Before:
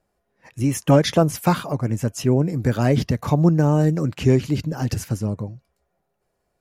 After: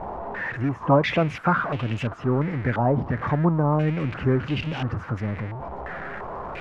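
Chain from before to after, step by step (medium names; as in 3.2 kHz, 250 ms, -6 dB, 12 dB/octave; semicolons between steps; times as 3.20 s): jump at every zero crossing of -23.5 dBFS; step-sequenced low-pass 2.9 Hz 900–2800 Hz; trim -6.5 dB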